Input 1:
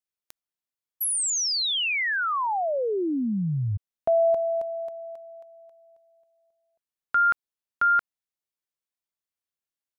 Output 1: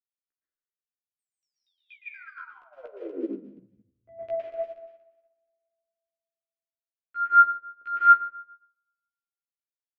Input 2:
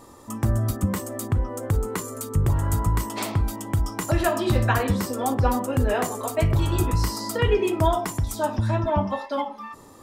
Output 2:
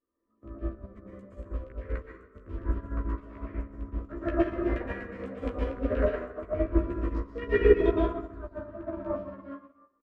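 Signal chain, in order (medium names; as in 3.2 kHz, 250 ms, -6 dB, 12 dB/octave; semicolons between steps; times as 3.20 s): local Wiener filter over 15 samples; peaking EQ 1.1 kHz +3 dB 1.1 oct; LFO low-pass saw down 4.2 Hz 520–2600 Hz; static phaser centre 350 Hz, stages 4; doubling 15 ms -3 dB; plate-style reverb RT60 1.5 s, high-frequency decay 0.5×, pre-delay 105 ms, DRR -6 dB; upward expansion 2.5:1, over -32 dBFS; trim -4 dB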